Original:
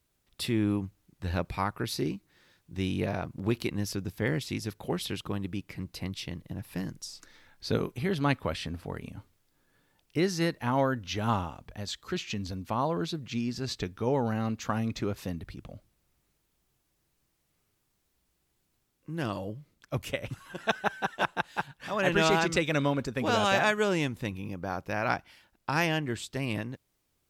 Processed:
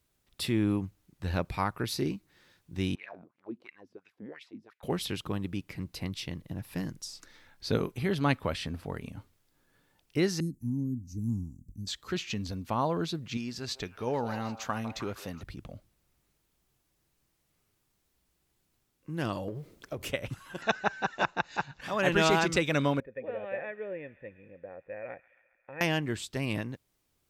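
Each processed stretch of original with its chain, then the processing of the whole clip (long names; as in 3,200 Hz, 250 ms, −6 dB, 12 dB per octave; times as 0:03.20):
0:02.95–0:04.83: low-shelf EQ 360 Hz −10.5 dB + LFO wah 2.9 Hz 200–2,400 Hz, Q 4.5
0:10.40–0:11.87: elliptic band-stop filter 270–7,100 Hz + high-shelf EQ 5,300 Hz −5 dB
0:13.37–0:15.43: low-shelf EQ 470 Hz −7 dB + echo through a band-pass that steps 155 ms, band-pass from 730 Hz, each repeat 0.7 octaves, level −8 dB
0:19.48–0:20.08: mu-law and A-law mismatch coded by mu + parametric band 430 Hz +11.5 dB 1.2 octaves + downward compressor 16 to 1, threshold −32 dBFS
0:20.62–0:21.81: Butterworth band-reject 3,200 Hz, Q 7.6 + upward compression, threshold −37 dBFS + bad sample-rate conversion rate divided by 3×, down none, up filtered
0:23.00–0:25.81: formant resonators in series e + delay with a high-pass on its return 136 ms, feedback 72%, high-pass 1,500 Hz, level −17 dB
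whole clip: no processing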